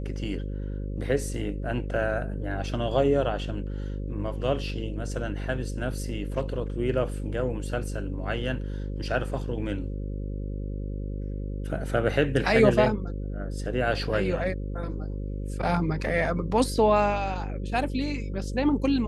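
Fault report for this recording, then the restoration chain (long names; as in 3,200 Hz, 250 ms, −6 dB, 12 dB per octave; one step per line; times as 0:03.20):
mains buzz 50 Hz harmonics 11 −32 dBFS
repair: hum removal 50 Hz, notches 11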